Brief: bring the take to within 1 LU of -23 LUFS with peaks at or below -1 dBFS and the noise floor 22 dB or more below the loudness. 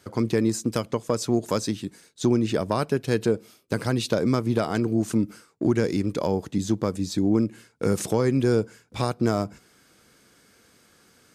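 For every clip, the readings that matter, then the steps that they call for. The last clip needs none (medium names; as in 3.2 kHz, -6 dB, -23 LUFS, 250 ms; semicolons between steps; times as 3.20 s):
loudness -25.5 LUFS; peak level -9.5 dBFS; loudness target -23.0 LUFS
-> trim +2.5 dB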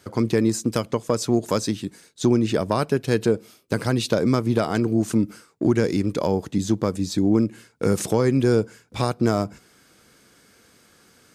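loudness -23.0 LUFS; peak level -7.0 dBFS; noise floor -57 dBFS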